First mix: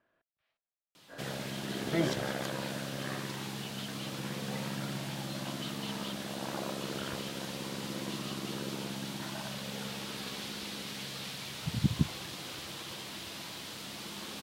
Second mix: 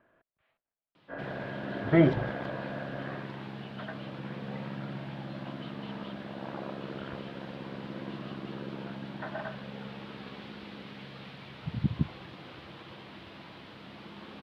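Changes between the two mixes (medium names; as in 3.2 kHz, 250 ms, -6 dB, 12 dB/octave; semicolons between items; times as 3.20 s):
speech +11.0 dB; master: add distance through air 410 m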